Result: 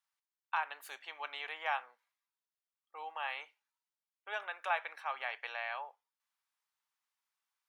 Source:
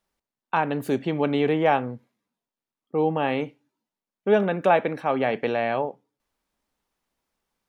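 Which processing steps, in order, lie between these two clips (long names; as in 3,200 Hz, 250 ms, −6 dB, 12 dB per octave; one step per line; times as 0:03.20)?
high-pass filter 950 Hz 24 dB per octave
level −7.5 dB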